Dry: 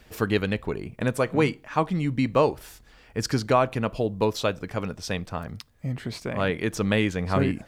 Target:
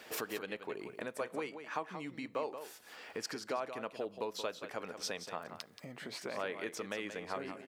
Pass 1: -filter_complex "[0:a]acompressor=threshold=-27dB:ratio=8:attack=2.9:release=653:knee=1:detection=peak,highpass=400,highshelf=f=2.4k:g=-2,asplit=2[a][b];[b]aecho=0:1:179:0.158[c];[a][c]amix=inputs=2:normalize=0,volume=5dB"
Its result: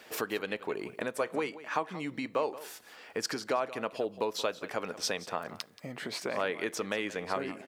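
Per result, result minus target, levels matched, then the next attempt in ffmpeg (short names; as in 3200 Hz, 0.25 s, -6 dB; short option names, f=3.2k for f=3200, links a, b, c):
compressor: peak gain reduction -7 dB; echo-to-direct -6.5 dB
-filter_complex "[0:a]acompressor=threshold=-35dB:ratio=8:attack=2.9:release=653:knee=1:detection=peak,highpass=400,highshelf=f=2.4k:g=-2,asplit=2[a][b];[b]aecho=0:1:179:0.158[c];[a][c]amix=inputs=2:normalize=0,volume=5dB"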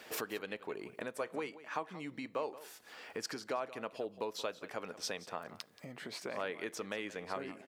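echo-to-direct -6.5 dB
-filter_complex "[0:a]acompressor=threshold=-35dB:ratio=8:attack=2.9:release=653:knee=1:detection=peak,highpass=400,highshelf=f=2.4k:g=-2,asplit=2[a][b];[b]aecho=0:1:179:0.335[c];[a][c]amix=inputs=2:normalize=0,volume=5dB"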